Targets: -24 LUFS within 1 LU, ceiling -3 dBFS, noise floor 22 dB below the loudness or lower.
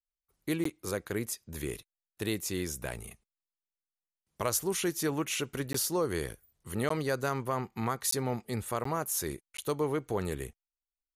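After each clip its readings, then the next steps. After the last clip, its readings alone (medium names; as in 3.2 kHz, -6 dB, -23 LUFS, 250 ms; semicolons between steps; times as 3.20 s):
dropouts 6; longest dropout 14 ms; loudness -33.5 LUFS; peak level -17.0 dBFS; loudness target -24.0 LUFS
-> interpolate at 0.64/5.73/6.89/8.11/8.84/9.57 s, 14 ms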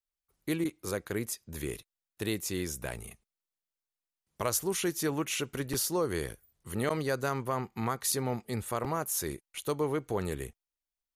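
dropouts 0; loudness -33.0 LUFS; peak level -16.5 dBFS; loudness target -24.0 LUFS
-> trim +9 dB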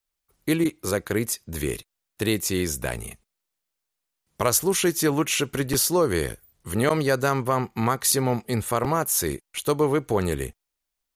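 loudness -24.0 LUFS; peak level -7.5 dBFS; noise floor -83 dBFS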